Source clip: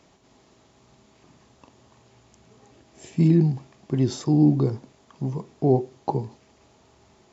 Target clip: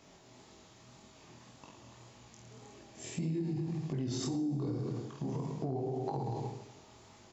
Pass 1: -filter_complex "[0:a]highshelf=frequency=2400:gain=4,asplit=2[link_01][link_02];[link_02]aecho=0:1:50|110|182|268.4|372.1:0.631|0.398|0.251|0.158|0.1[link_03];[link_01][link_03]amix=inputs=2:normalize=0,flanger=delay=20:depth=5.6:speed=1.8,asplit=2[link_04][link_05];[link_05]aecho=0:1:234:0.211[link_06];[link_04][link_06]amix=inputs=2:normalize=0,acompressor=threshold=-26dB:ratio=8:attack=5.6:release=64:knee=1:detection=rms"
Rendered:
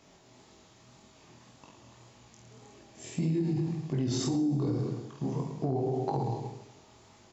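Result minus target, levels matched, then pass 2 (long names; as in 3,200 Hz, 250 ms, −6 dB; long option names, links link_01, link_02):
downward compressor: peak gain reduction −5.5 dB
-filter_complex "[0:a]highshelf=frequency=2400:gain=4,asplit=2[link_01][link_02];[link_02]aecho=0:1:50|110|182|268.4|372.1:0.631|0.398|0.251|0.158|0.1[link_03];[link_01][link_03]amix=inputs=2:normalize=0,flanger=delay=20:depth=5.6:speed=1.8,asplit=2[link_04][link_05];[link_05]aecho=0:1:234:0.211[link_06];[link_04][link_06]amix=inputs=2:normalize=0,acompressor=threshold=-32.5dB:ratio=8:attack=5.6:release=64:knee=1:detection=rms"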